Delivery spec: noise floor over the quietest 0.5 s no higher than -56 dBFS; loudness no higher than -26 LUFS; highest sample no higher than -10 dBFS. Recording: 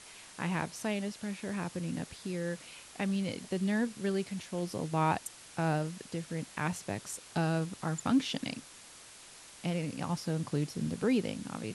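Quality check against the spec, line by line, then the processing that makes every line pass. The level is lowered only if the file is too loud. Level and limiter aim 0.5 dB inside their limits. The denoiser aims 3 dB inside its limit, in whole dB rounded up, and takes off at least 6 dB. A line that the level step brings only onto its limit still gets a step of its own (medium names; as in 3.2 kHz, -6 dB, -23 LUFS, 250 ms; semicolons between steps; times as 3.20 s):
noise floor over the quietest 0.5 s -53 dBFS: fail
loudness -34.5 LUFS: pass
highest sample -17.0 dBFS: pass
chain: noise reduction 6 dB, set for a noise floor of -53 dBFS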